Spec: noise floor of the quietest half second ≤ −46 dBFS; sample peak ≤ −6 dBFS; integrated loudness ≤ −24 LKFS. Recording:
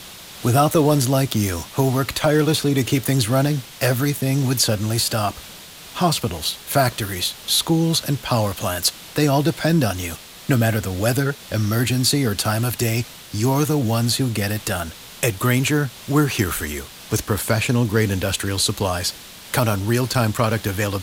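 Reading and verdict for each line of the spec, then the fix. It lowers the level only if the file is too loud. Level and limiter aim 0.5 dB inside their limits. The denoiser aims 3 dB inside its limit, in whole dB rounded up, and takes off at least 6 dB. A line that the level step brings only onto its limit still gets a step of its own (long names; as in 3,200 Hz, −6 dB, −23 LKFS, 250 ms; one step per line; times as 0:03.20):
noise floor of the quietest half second −40 dBFS: out of spec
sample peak −4.5 dBFS: out of spec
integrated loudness −20.5 LKFS: out of spec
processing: broadband denoise 6 dB, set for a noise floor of −40 dBFS
level −4 dB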